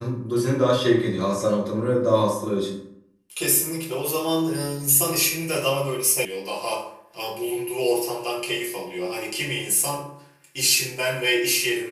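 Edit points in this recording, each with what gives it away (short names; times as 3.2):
6.25 sound cut off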